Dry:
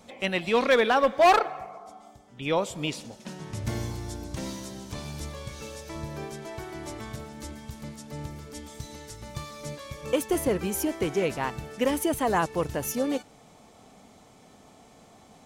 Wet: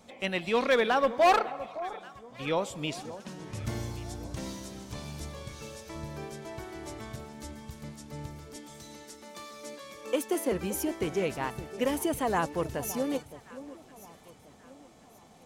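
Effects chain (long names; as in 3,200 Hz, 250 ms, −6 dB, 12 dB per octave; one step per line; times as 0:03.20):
0:08.56–0:10.52: Butterworth high-pass 210 Hz 48 dB per octave
on a send: delay that swaps between a low-pass and a high-pass 566 ms, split 1,100 Hz, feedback 58%, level −14 dB
on the sum: level −3.5 dB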